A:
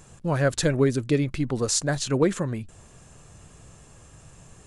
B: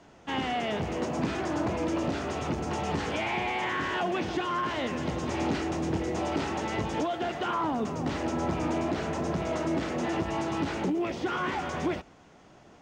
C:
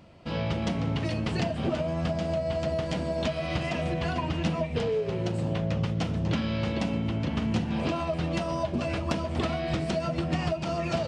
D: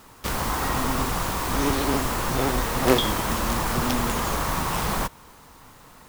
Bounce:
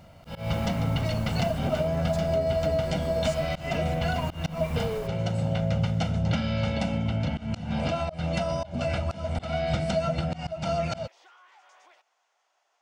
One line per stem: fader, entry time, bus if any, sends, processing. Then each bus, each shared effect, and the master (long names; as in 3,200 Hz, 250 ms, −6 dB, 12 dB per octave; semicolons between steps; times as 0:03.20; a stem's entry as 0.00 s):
−12.0 dB, 1.55 s, bus A, no send, no processing
−13.5 dB, 0.00 s, bus A, no send, high-pass filter 730 Hz 24 dB per octave; high-shelf EQ 2,800 Hz +8 dB; downward compressor 10 to 1, threshold −38 dBFS, peak gain reduction 12 dB
−0.5 dB, 0.00 s, no bus, no send, comb filter 1.4 ms, depth 77%
−13.5 dB, 0.00 s, bus A, no send, brickwall limiter −15 dBFS, peak gain reduction 10.5 dB
bus A: 0.0 dB, tilt shelving filter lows +4 dB, about 740 Hz; downward compressor 6 to 1, threshold −35 dBFS, peak gain reduction 11 dB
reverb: not used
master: volume swells 174 ms